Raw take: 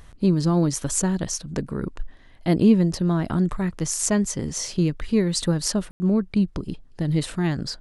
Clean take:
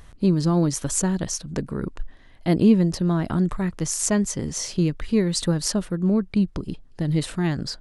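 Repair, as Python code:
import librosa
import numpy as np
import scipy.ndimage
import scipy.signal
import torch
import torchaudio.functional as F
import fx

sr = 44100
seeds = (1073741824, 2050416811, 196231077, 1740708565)

y = fx.fix_ambience(x, sr, seeds[0], print_start_s=1.96, print_end_s=2.46, start_s=5.91, end_s=6.0)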